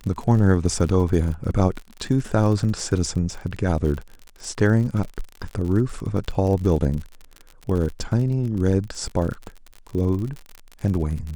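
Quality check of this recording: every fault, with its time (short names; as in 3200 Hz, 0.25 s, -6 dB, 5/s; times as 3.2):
crackle 49/s -29 dBFS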